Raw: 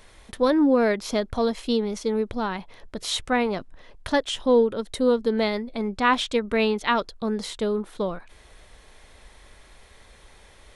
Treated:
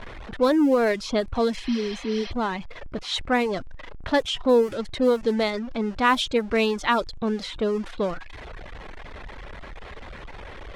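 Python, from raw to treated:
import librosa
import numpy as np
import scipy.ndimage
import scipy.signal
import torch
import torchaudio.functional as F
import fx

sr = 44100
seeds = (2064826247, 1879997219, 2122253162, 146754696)

y = x + 0.5 * 10.0 ** (-31.0 / 20.0) * np.sign(x)
y = fx.spec_repair(y, sr, seeds[0], start_s=1.64, length_s=0.65, low_hz=440.0, high_hz=6100.0, source='before')
y = fx.env_lowpass(y, sr, base_hz=1800.0, full_db=-15.0)
y = fx.dereverb_blind(y, sr, rt60_s=0.62)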